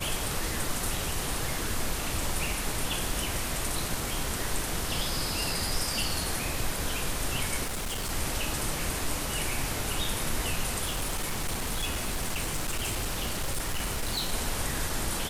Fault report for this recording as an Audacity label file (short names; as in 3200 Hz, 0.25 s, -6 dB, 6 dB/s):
7.640000	8.110000	clipped -29 dBFS
10.840000	14.330000	clipped -26 dBFS